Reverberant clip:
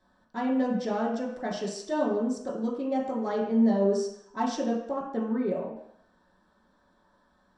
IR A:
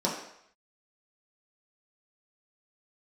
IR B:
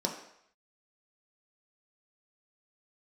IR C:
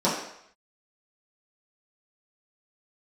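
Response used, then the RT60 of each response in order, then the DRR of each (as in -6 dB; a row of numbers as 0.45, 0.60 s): A; 0.70, 0.70, 0.70 s; -5.0, 0.0, -9.5 dB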